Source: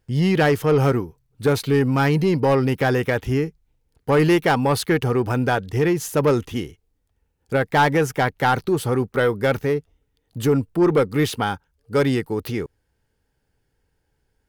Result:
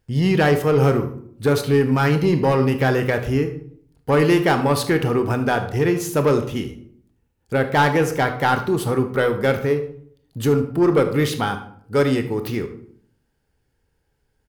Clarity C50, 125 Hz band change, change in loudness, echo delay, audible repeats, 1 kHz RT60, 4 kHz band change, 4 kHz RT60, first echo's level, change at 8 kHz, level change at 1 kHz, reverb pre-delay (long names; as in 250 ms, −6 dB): 10.0 dB, +1.0 dB, +1.0 dB, 75 ms, 1, 0.55 s, +0.5 dB, 0.40 s, −15.5 dB, +0.5 dB, +0.5 dB, 20 ms